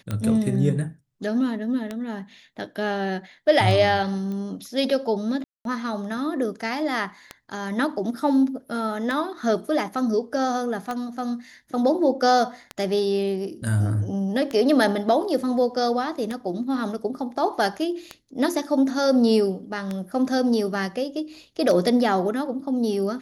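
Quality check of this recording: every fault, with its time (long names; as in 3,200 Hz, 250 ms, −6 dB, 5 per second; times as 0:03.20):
scratch tick 33 1/3 rpm −15 dBFS
0:04.32: click −23 dBFS
0:05.44–0:05.65: drop-out 212 ms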